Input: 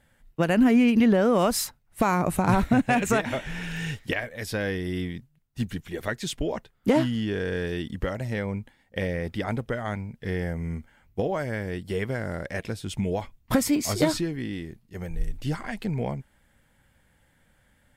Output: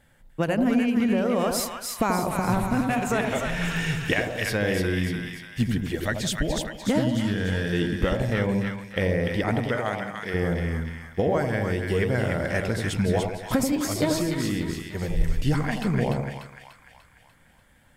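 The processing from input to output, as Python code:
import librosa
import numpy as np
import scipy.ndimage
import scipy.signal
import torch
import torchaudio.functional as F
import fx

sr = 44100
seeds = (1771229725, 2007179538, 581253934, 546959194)

y = fx.graphic_eq_15(x, sr, hz=(400, 1000, 2500), db=(-11, -6, -4), at=(5.95, 7.73))
y = fx.rider(y, sr, range_db=5, speed_s=0.5)
y = fx.highpass(y, sr, hz=fx.line((9.58, 250.0), (10.33, 690.0)), slope=6, at=(9.58, 10.33), fade=0.02)
y = fx.echo_split(y, sr, split_hz=950.0, low_ms=86, high_ms=295, feedback_pct=52, wet_db=-4.0)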